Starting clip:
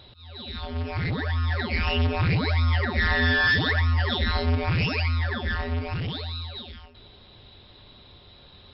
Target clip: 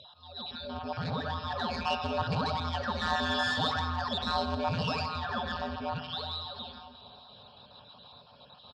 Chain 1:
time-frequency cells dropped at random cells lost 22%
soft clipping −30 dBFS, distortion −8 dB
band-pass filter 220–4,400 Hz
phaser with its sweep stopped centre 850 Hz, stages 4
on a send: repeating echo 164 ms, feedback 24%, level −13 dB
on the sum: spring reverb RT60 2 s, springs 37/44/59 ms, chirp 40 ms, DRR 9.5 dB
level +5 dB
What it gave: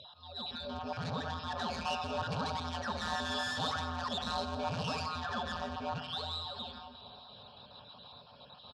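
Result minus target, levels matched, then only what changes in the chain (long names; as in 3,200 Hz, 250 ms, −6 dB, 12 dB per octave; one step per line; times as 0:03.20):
soft clipping: distortion +9 dB
change: soft clipping −21 dBFS, distortion −17 dB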